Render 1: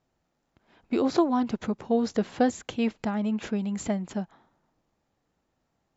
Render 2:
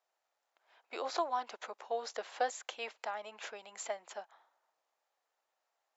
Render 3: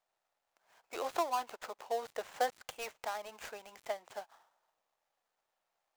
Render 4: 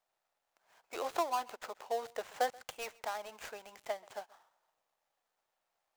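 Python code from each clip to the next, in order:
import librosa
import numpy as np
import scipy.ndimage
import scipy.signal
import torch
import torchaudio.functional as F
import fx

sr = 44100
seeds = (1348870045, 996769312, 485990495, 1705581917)

y1 = scipy.signal.sosfilt(scipy.signal.butter(4, 590.0, 'highpass', fs=sr, output='sos'), x)
y1 = y1 * 10.0 ** (-4.0 / 20.0)
y2 = fx.dead_time(y1, sr, dead_ms=0.12)
y2 = y2 * 10.0 ** (1.0 / 20.0)
y3 = y2 + 10.0 ** (-24.0 / 20.0) * np.pad(y2, (int(131 * sr / 1000.0), 0))[:len(y2)]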